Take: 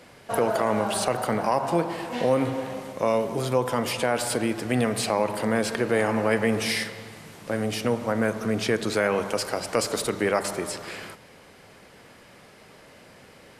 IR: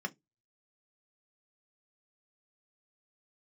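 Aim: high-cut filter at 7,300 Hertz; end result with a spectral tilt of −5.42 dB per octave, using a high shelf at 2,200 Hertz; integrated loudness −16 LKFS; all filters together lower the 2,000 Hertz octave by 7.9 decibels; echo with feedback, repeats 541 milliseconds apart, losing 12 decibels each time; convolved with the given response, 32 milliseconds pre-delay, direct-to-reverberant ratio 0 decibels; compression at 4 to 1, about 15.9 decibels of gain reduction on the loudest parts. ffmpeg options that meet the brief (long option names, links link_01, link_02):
-filter_complex "[0:a]lowpass=7300,equalizer=frequency=2000:width_type=o:gain=-6,highshelf=frequency=2200:gain=-8,acompressor=threshold=-39dB:ratio=4,aecho=1:1:541|1082|1623:0.251|0.0628|0.0157,asplit=2[link_01][link_02];[1:a]atrim=start_sample=2205,adelay=32[link_03];[link_02][link_03]afir=irnorm=-1:irlink=0,volume=-2.5dB[link_04];[link_01][link_04]amix=inputs=2:normalize=0,volume=22dB"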